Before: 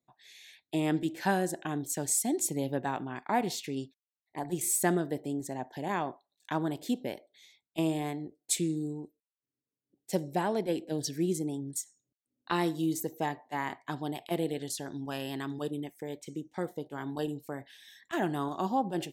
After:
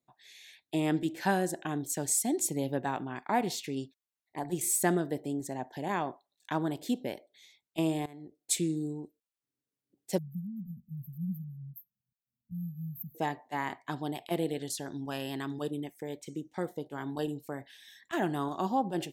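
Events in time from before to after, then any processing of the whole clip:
0:08.06–0:08.51: fade in, from −20.5 dB
0:10.18–0:13.15: linear-phase brick-wall band-stop 230–12,000 Hz

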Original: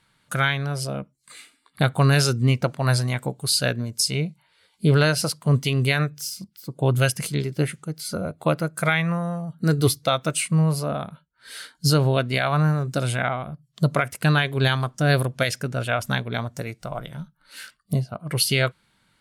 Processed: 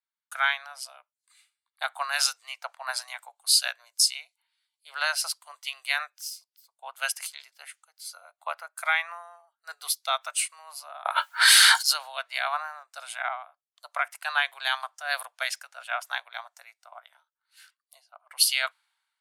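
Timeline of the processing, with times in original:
0:11.05–0:11.93: envelope flattener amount 100%
whole clip: Butterworth high-pass 730 Hz 48 dB per octave; multiband upward and downward expander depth 70%; level −4 dB

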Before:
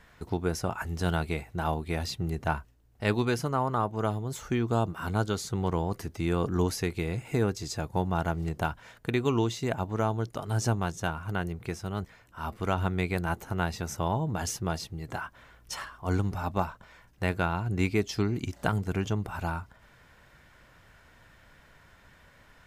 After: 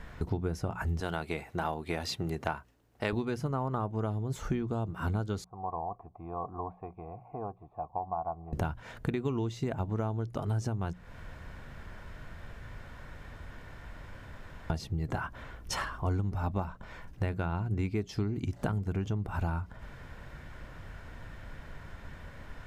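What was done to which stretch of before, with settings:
0:01.00–0:03.13: high-pass filter 580 Hz 6 dB per octave
0:05.44–0:08.53: formant resonators in series a
0:10.93–0:14.70: fill with room tone
whole clip: spectral tilt −2 dB per octave; downward compressor 6 to 1, threshold −36 dBFS; mains-hum notches 60/120/180 Hz; level +7 dB

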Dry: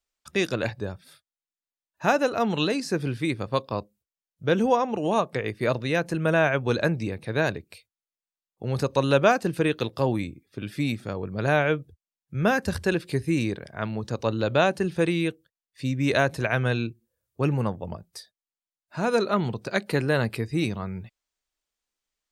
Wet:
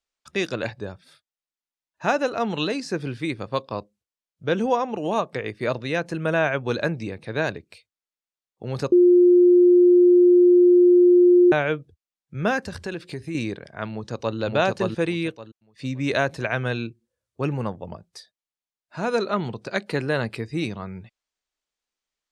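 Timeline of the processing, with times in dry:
0:08.92–0:11.52: beep over 355 Hz −10 dBFS
0:12.60–0:13.35: downward compressor 2.5 to 1, threshold −28 dBFS
0:13.90–0:14.37: delay throw 570 ms, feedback 20%, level −0.5 dB
whole clip: low-pass filter 7,700 Hz 12 dB per octave; low-shelf EQ 120 Hz −6 dB

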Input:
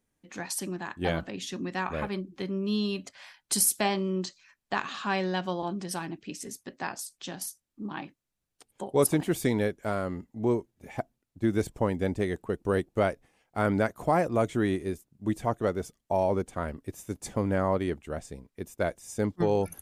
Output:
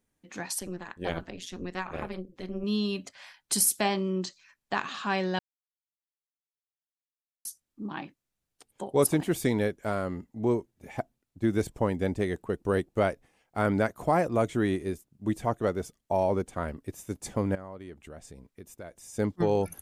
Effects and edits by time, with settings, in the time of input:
0:00.59–0:02.64: amplitude modulation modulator 180 Hz, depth 85%
0:05.39–0:07.45: silence
0:17.55–0:19.14: downward compressor 3 to 1, threshold −44 dBFS

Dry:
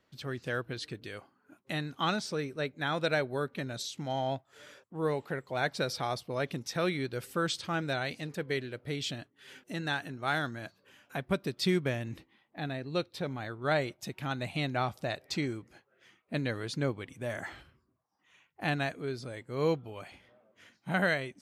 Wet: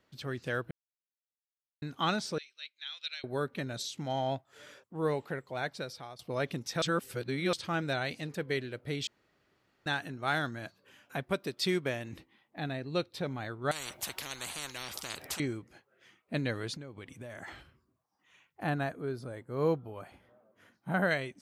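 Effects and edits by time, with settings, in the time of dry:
0:00.71–0:01.82: silence
0:02.38–0:03.24: flat-topped band-pass 3,800 Hz, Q 1.4
0:05.14–0:06.19: fade out, to −17.5 dB
0:06.82–0:07.53: reverse
0:09.07–0:09.86: fill with room tone
0:11.23–0:12.13: bass and treble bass −7 dB, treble +1 dB
0:13.71–0:15.40: every bin compressed towards the loudest bin 10 to 1
0:16.74–0:17.48: downward compressor 12 to 1, threshold −40 dBFS
0:18.63–0:21.11: flat-topped bell 4,000 Hz −9 dB 2.3 octaves

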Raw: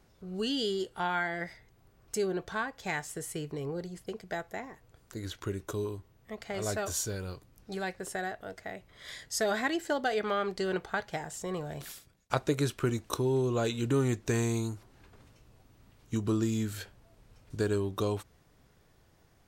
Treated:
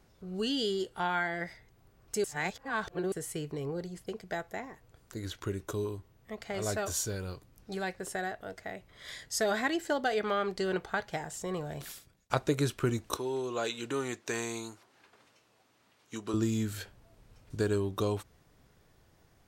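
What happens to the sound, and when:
0:02.24–0:03.12: reverse
0:13.17–0:16.34: meter weighting curve A

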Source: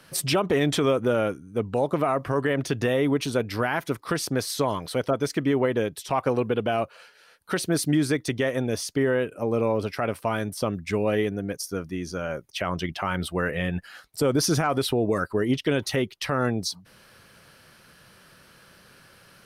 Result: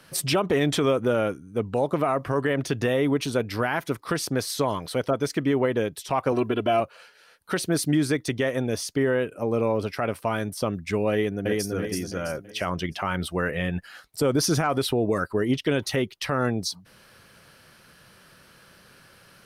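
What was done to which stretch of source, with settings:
0:06.32–0:06.80: comb filter 3 ms, depth 80%
0:11.12–0:11.72: delay throw 330 ms, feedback 40%, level −1.5 dB

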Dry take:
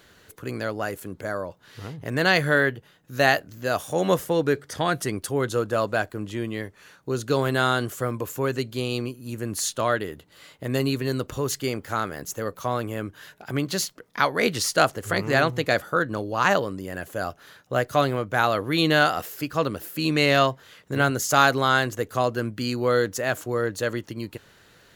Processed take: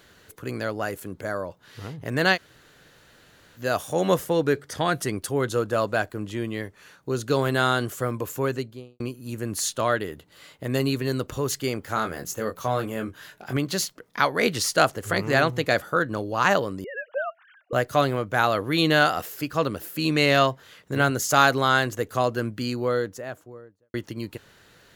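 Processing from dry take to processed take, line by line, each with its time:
0:02.35–0:03.58: fill with room tone, crossfade 0.06 s
0:08.42–0:09.00: fade out and dull
0:11.94–0:13.57: double-tracking delay 23 ms −6 dB
0:16.84–0:17.73: three sine waves on the formant tracks
0:22.39–0:23.94: fade out and dull

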